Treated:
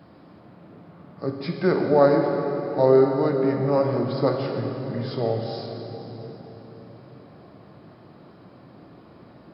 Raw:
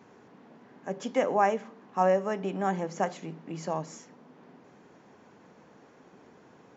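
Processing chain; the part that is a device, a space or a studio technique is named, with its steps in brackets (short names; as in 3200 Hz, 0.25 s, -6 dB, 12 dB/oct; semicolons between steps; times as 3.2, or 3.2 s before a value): slowed and reverbed (varispeed -29%; reverb RT60 4.3 s, pre-delay 3 ms, DRR 2 dB); gain +5 dB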